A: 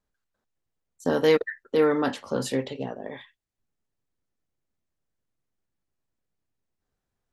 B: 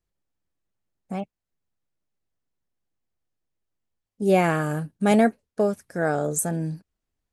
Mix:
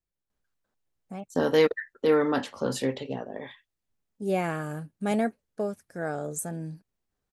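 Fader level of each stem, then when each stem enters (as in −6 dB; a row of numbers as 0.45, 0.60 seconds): −1.0, −8.0 decibels; 0.30, 0.00 seconds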